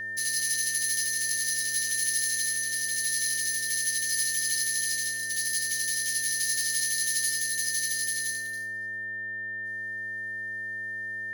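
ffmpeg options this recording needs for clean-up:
ffmpeg -i in.wav -af "bandreject=frequency=111.4:width_type=h:width=4,bandreject=frequency=222.8:width_type=h:width=4,bandreject=frequency=334.2:width_type=h:width=4,bandreject=frequency=445.6:width_type=h:width=4,bandreject=frequency=557:width_type=h:width=4,bandreject=frequency=668.4:width_type=h:width=4,bandreject=frequency=1800:width=30" out.wav

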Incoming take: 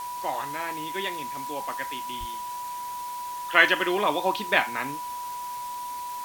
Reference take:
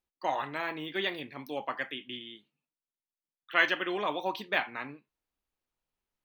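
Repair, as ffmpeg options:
ffmpeg -i in.wav -filter_complex "[0:a]bandreject=frequency=980:width=30,asplit=3[link_01][link_02][link_03];[link_01]afade=type=out:start_time=2.19:duration=0.02[link_04];[link_02]highpass=frequency=140:width=0.5412,highpass=frequency=140:width=1.3066,afade=type=in:start_time=2.19:duration=0.02,afade=type=out:start_time=2.31:duration=0.02[link_05];[link_03]afade=type=in:start_time=2.31:duration=0.02[link_06];[link_04][link_05][link_06]amix=inputs=3:normalize=0,afwtdn=0.0063,asetnsamples=nb_out_samples=441:pad=0,asendcmd='3.02 volume volume -7dB',volume=0dB" out.wav

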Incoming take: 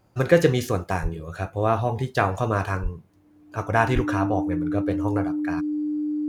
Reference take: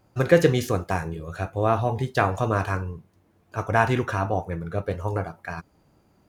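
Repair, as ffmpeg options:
ffmpeg -i in.wav -filter_complex "[0:a]bandreject=frequency=300:width=30,asplit=3[link_01][link_02][link_03];[link_01]afade=type=out:start_time=1.02:duration=0.02[link_04];[link_02]highpass=frequency=140:width=0.5412,highpass=frequency=140:width=1.3066,afade=type=in:start_time=1.02:duration=0.02,afade=type=out:start_time=1.14:duration=0.02[link_05];[link_03]afade=type=in:start_time=1.14:duration=0.02[link_06];[link_04][link_05][link_06]amix=inputs=3:normalize=0,asplit=3[link_07][link_08][link_09];[link_07]afade=type=out:start_time=2.82:duration=0.02[link_10];[link_08]highpass=frequency=140:width=0.5412,highpass=frequency=140:width=1.3066,afade=type=in:start_time=2.82:duration=0.02,afade=type=out:start_time=2.94:duration=0.02[link_11];[link_09]afade=type=in:start_time=2.94:duration=0.02[link_12];[link_10][link_11][link_12]amix=inputs=3:normalize=0,asplit=3[link_13][link_14][link_15];[link_13]afade=type=out:start_time=3.94:duration=0.02[link_16];[link_14]highpass=frequency=140:width=0.5412,highpass=frequency=140:width=1.3066,afade=type=in:start_time=3.94:duration=0.02,afade=type=out:start_time=4.06:duration=0.02[link_17];[link_15]afade=type=in:start_time=4.06:duration=0.02[link_18];[link_16][link_17][link_18]amix=inputs=3:normalize=0" out.wav

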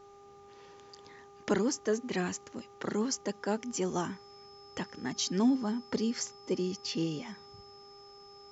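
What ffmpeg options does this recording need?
ffmpeg -i in.wav -af "bandreject=frequency=402.1:width_type=h:width=4,bandreject=frequency=804.2:width_type=h:width=4,bandreject=frequency=1206.3:width_type=h:width=4,bandreject=frequency=5200:width=30" out.wav

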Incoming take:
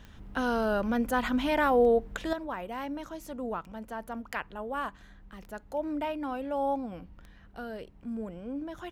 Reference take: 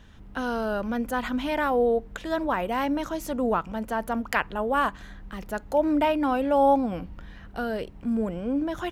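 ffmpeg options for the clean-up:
ffmpeg -i in.wav -af "adeclick=threshold=4,asetnsamples=nb_out_samples=441:pad=0,asendcmd='2.33 volume volume 10dB',volume=0dB" out.wav

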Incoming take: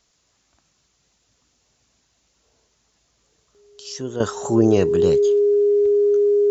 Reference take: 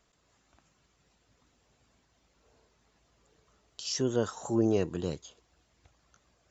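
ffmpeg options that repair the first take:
ffmpeg -i in.wav -af "bandreject=frequency=410:width=30,agate=range=-21dB:threshold=-58dB,asetnsamples=nb_out_samples=441:pad=0,asendcmd='4.2 volume volume -10.5dB',volume=0dB" out.wav

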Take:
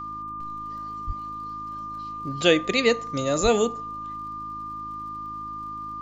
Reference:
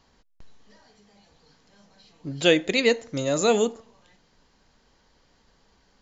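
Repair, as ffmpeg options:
ffmpeg -i in.wav -filter_complex "[0:a]adeclick=threshold=4,bandreject=frequency=53.2:width_type=h:width=4,bandreject=frequency=106.4:width_type=h:width=4,bandreject=frequency=159.6:width_type=h:width=4,bandreject=frequency=212.8:width_type=h:width=4,bandreject=frequency=266:width_type=h:width=4,bandreject=frequency=319.2:width_type=h:width=4,bandreject=frequency=1200:width=30,asplit=3[link_01][link_02][link_03];[link_01]afade=type=out:start_time=1.06:duration=0.02[link_04];[link_02]highpass=frequency=140:width=0.5412,highpass=frequency=140:width=1.3066,afade=type=in:start_time=1.06:duration=0.02,afade=type=out:start_time=1.18:duration=0.02[link_05];[link_03]afade=type=in:start_time=1.18:duration=0.02[link_06];[link_04][link_05][link_06]amix=inputs=3:normalize=0,asplit=3[link_07][link_08][link_09];[link_07]afade=type=out:start_time=3.42:duration=0.02[link_10];[link_08]highpass=frequency=140:width=0.5412,highpass=frequency=140:width=1.3066,afade=type=in:start_time=3.42:duration=0.02,afade=type=out:start_time=3.54:duration=0.02[link_11];[link_09]afade=type=in:start_time=3.54:duration=0.02[link_12];[link_10][link_11][link_12]amix=inputs=3:normalize=0" out.wav

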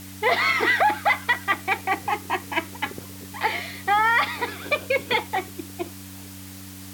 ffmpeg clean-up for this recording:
ffmpeg -i in.wav -af "bandreject=frequency=95.4:width_type=h:width=4,bandreject=frequency=190.8:width_type=h:width=4,bandreject=frequency=286.2:width_type=h:width=4,afftdn=noise_reduction=29:noise_floor=-40" out.wav

